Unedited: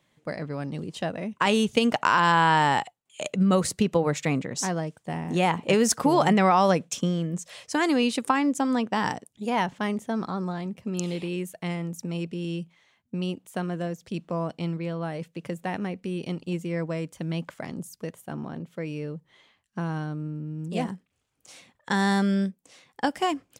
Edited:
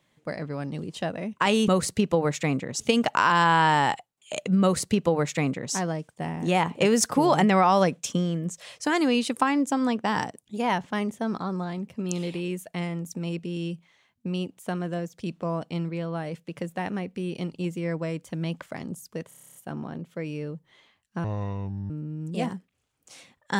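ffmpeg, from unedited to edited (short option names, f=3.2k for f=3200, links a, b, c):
-filter_complex "[0:a]asplit=14[a][b][c][d][e][f][g][h][i][j][k][l][m][n];[a]atrim=end=1.682[o];[b]atrim=start=3.498:end=4.622[p];[c]atrim=start=1.678:end=18.192[q];[d]atrim=start=18.158:end=18.192[r];[e]atrim=start=18.158:end=18.192[s];[f]atrim=start=18.158:end=18.192[t];[g]atrim=start=18.158:end=18.192[u];[h]atrim=start=18.158:end=18.192[v];[i]atrim=start=18.158:end=18.192[w];[j]atrim=start=18.158:end=18.192[x];[k]atrim=start=18.158:end=18.192[y];[l]atrim=start=18.158:end=19.854[z];[m]atrim=start=19.85:end=20.28,asetpts=PTS-STARTPTS,asetrate=28665,aresample=44100[aa];[n]atrim=start=20.276[ab];[o][p]acrossfade=d=0.004:c1=hsin:c2=hsin[ac];[ac][q]acrossfade=d=0.004:c1=hsin:c2=hsin[ad];[ad][r]acrossfade=d=0.004:c1=hsin:c2=hsin[ae];[ae][s]acrossfade=d=0.004:c1=hsin:c2=hsin[af];[af][t]acrossfade=d=0.004:c1=hsin:c2=hsin[ag];[ag][u]acrossfade=d=0.004:c1=hsin:c2=hsin[ah];[ah][v]acrossfade=d=0.004:c1=hsin:c2=hsin[ai];[ai][w]acrossfade=d=0.004:c1=hsin:c2=hsin[aj];[aj][x]acrossfade=d=0.004:c1=hsin:c2=hsin[ak];[ak][y]acrossfade=d=0.004:c1=hsin:c2=hsin[al];[al][z]acrossfade=d=0.004:c1=hsin:c2=hsin[am];[am][aa]acrossfade=d=0.004:c1=hsin:c2=hsin[an];[an][ab]acrossfade=d=0.004:c1=hsin:c2=hsin"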